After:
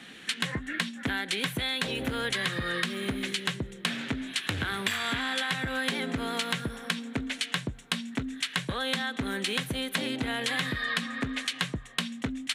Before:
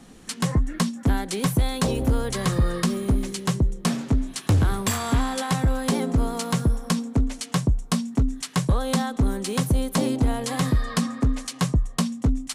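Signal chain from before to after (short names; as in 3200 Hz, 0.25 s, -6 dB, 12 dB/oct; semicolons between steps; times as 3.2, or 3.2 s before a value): Bessel high-pass 160 Hz, order 2; band shelf 2400 Hz +14.5 dB; compressor, threshold -24 dBFS, peak gain reduction 10.5 dB; gain -2.5 dB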